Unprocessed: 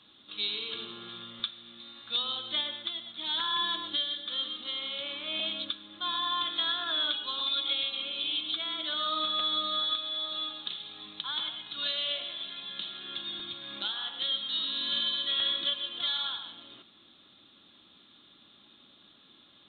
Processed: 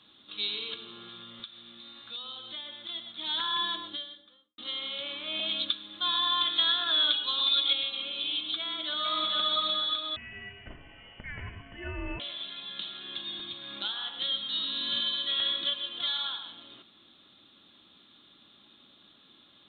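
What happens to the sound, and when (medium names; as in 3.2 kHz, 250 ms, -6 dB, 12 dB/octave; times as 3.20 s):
0.74–2.89 s: compression 2:1, threshold -44 dBFS
3.60–4.58 s: studio fade out
5.49–7.73 s: treble shelf 3 kHz +8.5 dB
8.59–9.30 s: echo throw 450 ms, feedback 30%, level -1.5 dB
10.16–12.20 s: frequency inversion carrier 3.2 kHz
13.02–13.59 s: band-stop 1.4 kHz, Q 24
14.17–15.01 s: bass shelf 110 Hz +10.5 dB
16.10–16.50 s: high-pass 150 Hz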